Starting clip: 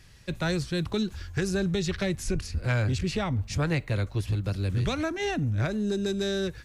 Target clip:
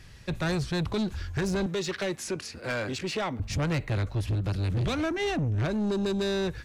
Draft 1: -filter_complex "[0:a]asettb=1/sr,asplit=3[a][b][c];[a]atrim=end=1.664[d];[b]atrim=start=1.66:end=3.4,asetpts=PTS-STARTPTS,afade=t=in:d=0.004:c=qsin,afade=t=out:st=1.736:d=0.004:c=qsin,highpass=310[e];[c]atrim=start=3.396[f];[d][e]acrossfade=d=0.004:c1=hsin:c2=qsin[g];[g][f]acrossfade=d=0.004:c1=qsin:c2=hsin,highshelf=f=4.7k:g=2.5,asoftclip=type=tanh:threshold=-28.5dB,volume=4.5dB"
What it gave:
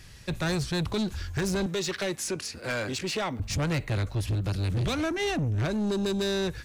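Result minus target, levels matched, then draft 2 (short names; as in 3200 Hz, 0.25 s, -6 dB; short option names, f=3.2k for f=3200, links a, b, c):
8000 Hz band +4.5 dB
-filter_complex "[0:a]asettb=1/sr,asplit=3[a][b][c];[a]atrim=end=1.664[d];[b]atrim=start=1.66:end=3.4,asetpts=PTS-STARTPTS,afade=t=in:d=0.004:c=qsin,afade=t=out:st=1.736:d=0.004:c=qsin,highpass=310[e];[c]atrim=start=3.396[f];[d][e]acrossfade=d=0.004:c1=hsin:c2=qsin[g];[g][f]acrossfade=d=0.004:c1=qsin:c2=hsin,highshelf=f=4.7k:g=-5.5,asoftclip=type=tanh:threshold=-28.5dB,volume=4.5dB"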